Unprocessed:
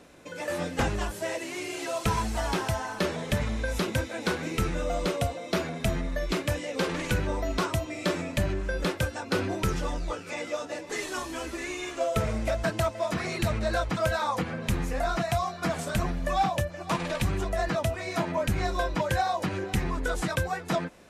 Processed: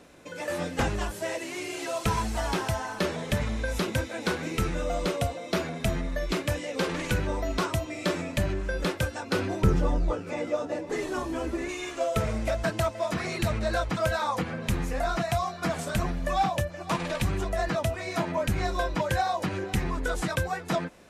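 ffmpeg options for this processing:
-filter_complex "[0:a]asettb=1/sr,asplit=3[a][b][c];[a]atrim=end=9.624[d];[b]atrim=start=9.62:end=11.69,asetpts=PTS-STARTPTS,afade=t=in:d=0.004:c=qsin,afade=t=out:st=2.066:d=0.004:c=qsin,tiltshelf=f=1.2k:g=7[e];[c]atrim=start=11.686[f];[d][e]acrossfade=d=0.004:c1=hsin:c2=qsin[g];[g][f]acrossfade=d=0.004:c1=qsin:c2=hsin"

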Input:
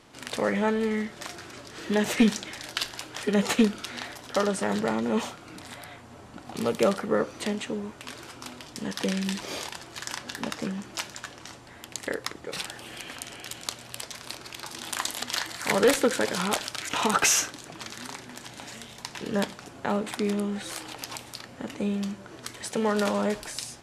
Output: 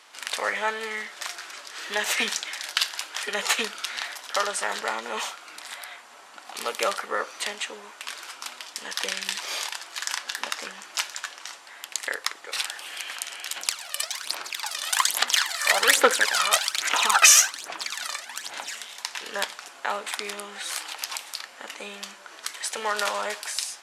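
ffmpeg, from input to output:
-filter_complex "[0:a]asettb=1/sr,asplit=3[a][b][c];[a]atrim=end=13.564[d];[b]atrim=start=13.56:end=18.75,asetpts=PTS-STARTPTS,afade=t=in:d=0.004:c=qsin,afade=t=out:st=5.186:d=0.004:c=qsin,aphaser=in_gain=1:out_gain=1:delay=1.7:decay=0.67:speed=1.2:type=sinusoidal[e];[c]atrim=start=18.746[f];[d][e]acrossfade=d=0.004:c1=hsin:c2=qsin[g];[g][f]acrossfade=d=0.004:c1=qsin:c2=hsin,highpass=1k,volume=6dB"

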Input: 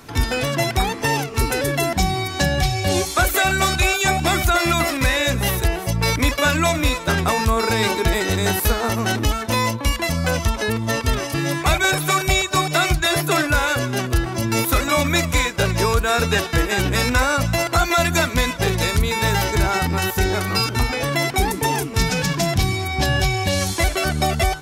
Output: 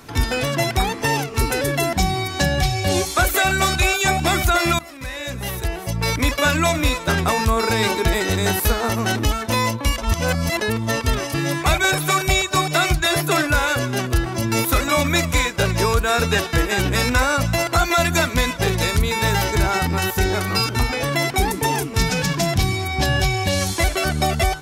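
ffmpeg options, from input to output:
-filter_complex "[0:a]asplit=4[a][b][c][d];[a]atrim=end=4.79,asetpts=PTS-STARTPTS,afade=t=out:st=4.786:d=0.004:c=hsin:silence=0.0841395[e];[b]atrim=start=4.79:end=9.982,asetpts=PTS-STARTPTS,afade=t=in:d=1.63:silence=0.0841395[f];[c]atrim=start=9.978:end=10.612,asetpts=PTS-STARTPTS,areverse[g];[d]atrim=start=10.608[h];[e][f]concat=n=2:v=0:a=1[i];[i][g]acrossfade=d=0.004:c1=hsin:c2=hsin[j];[j][h]acrossfade=d=0.004:c1=hsin:c2=hsin"

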